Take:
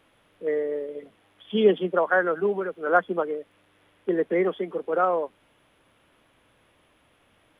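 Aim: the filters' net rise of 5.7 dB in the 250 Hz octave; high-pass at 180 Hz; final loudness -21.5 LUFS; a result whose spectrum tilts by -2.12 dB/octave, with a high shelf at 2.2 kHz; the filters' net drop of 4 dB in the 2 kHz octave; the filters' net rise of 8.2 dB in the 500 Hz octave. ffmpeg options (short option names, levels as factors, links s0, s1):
-af "highpass=180,equalizer=f=250:t=o:g=5,equalizer=f=500:t=o:g=9,equalizer=f=2000:t=o:g=-4.5,highshelf=f=2200:g=-5.5,volume=0.708"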